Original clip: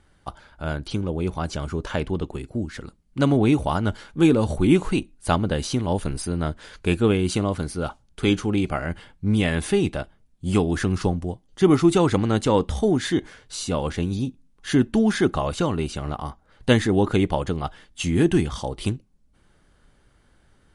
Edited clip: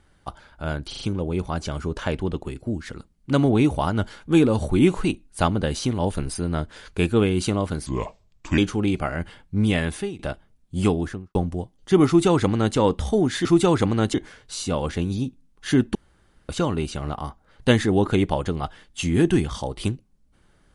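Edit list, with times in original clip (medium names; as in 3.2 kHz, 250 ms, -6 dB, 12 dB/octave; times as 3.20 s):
0.89 s: stutter 0.04 s, 4 plays
7.74–8.28 s: speed 75%
9.49–9.89 s: fade out, to -22 dB
10.56–11.05 s: studio fade out
11.77–12.46 s: copy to 13.15 s
14.96–15.50 s: room tone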